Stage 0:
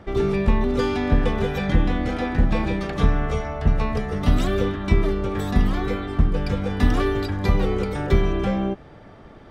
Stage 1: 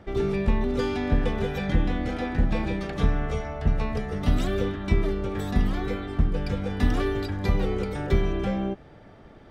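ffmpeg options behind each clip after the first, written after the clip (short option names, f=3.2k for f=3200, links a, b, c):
-af "equalizer=f=1.1k:t=o:w=0.38:g=-3.5,volume=-4dB"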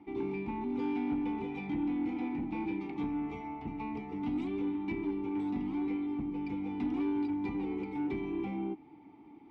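-filter_complex "[0:a]asplit=2[a][b];[b]alimiter=limit=-18dB:level=0:latency=1:release=187,volume=-0.5dB[c];[a][c]amix=inputs=2:normalize=0,asplit=3[d][e][f];[d]bandpass=f=300:t=q:w=8,volume=0dB[g];[e]bandpass=f=870:t=q:w=8,volume=-6dB[h];[f]bandpass=f=2.24k:t=q:w=8,volume=-9dB[i];[g][h][i]amix=inputs=3:normalize=0,asoftclip=type=tanh:threshold=-25.5dB"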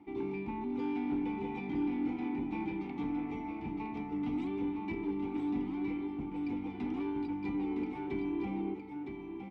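-af "aecho=1:1:962:0.501,volume=-1.5dB"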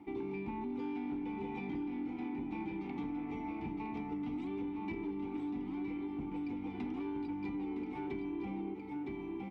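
-af "acompressor=threshold=-39dB:ratio=6,volume=2.5dB"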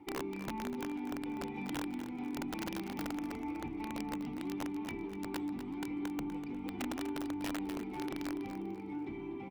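-filter_complex "[0:a]flanger=delay=2.1:depth=7.5:regen=-49:speed=0.28:shape=triangular,aeval=exprs='(mod(59.6*val(0)+1,2)-1)/59.6':c=same,asplit=2[a][b];[b]aecho=0:1:246|492|738|984:0.299|0.0985|0.0325|0.0107[c];[a][c]amix=inputs=2:normalize=0,volume=3.5dB"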